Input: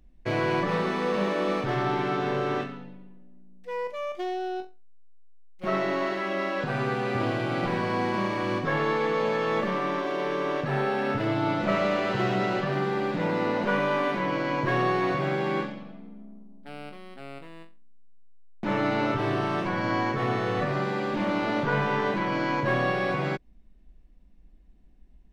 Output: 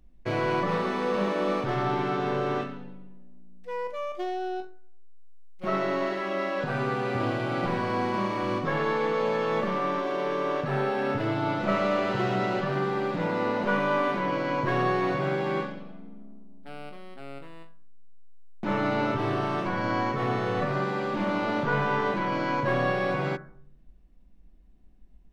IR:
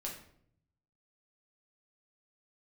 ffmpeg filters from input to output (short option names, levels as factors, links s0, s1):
-filter_complex "[0:a]asplit=2[s0][s1];[s1]highshelf=f=2200:t=q:w=3:g=-14[s2];[1:a]atrim=start_sample=2205[s3];[s2][s3]afir=irnorm=-1:irlink=0,volume=0.251[s4];[s0][s4]amix=inputs=2:normalize=0,volume=0.794"